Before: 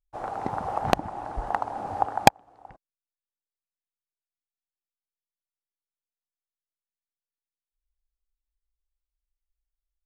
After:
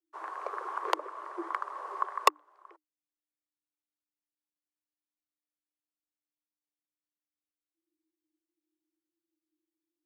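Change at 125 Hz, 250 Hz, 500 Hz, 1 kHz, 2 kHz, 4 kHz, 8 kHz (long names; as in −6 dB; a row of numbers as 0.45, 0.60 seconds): below −40 dB, −12.5 dB, −8.5 dB, −6.5 dB, −6.0 dB, −6.0 dB, −7.0 dB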